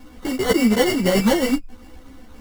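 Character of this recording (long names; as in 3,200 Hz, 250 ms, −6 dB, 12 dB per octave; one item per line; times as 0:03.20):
a buzz of ramps at a fixed pitch in blocks of 16 samples
phaser sweep stages 6, 3.8 Hz, lowest notch 650–2,600 Hz
aliases and images of a low sample rate 2,500 Hz, jitter 0%
a shimmering, thickened sound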